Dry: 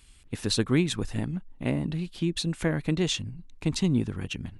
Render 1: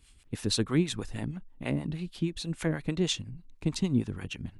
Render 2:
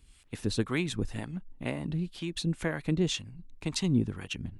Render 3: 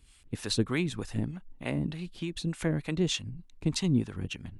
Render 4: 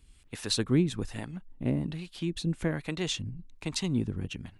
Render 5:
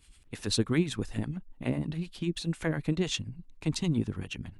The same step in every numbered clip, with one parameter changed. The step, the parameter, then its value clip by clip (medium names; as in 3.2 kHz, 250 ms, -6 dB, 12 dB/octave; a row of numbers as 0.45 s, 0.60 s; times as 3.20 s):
harmonic tremolo, rate: 6.3 Hz, 2 Hz, 3.3 Hz, 1.2 Hz, 10 Hz